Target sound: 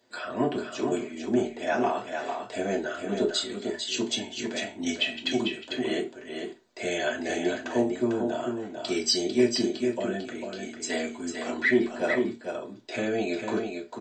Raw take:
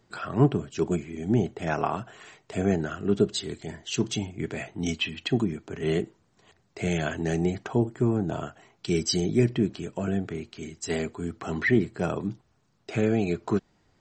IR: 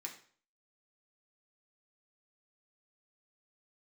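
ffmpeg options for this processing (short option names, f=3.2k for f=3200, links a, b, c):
-filter_complex "[0:a]aecho=1:1:448:0.501,acontrast=56[a];[1:a]atrim=start_sample=2205,asetrate=83790,aresample=44100[b];[a][b]afir=irnorm=-1:irlink=0,volume=5dB"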